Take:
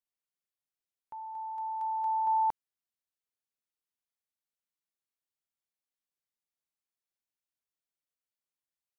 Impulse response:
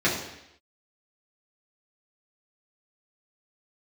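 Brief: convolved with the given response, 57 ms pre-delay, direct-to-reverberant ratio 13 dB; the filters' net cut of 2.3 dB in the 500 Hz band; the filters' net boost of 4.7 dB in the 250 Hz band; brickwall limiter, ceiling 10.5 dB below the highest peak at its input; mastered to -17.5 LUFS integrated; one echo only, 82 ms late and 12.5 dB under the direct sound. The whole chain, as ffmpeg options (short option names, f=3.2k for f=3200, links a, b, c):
-filter_complex "[0:a]equalizer=f=250:t=o:g=7.5,equalizer=f=500:t=o:g=-5,alimiter=level_in=10.5dB:limit=-24dB:level=0:latency=1,volume=-10.5dB,aecho=1:1:82:0.237,asplit=2[a][b];[1:a]atrim=start_sample=2205,adelay=57[c];[b][c]afir=irnorm=-1:irlink=0,volume=-28.5dB[d];[a][d]amix=inputs=2:normalize=0,volume=25.5dB"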